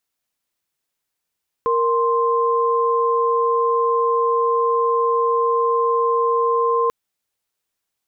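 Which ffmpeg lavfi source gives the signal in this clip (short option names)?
-f lavfi -i "aevalsrc='0.126*(sin(2*PI*466.16*t)+sin(2*PI*1046.5*t))':d=5.24:s=44100"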